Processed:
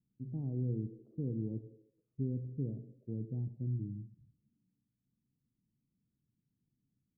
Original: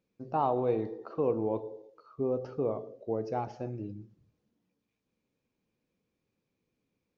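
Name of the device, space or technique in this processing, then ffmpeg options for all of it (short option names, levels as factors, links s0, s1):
the neighbour's flat through the wall: -af "lowpass=f=260:w=0.5412,lowpass=f=260:w=1.3066,equalizer=f=130:t=o:w=0.43:g=7"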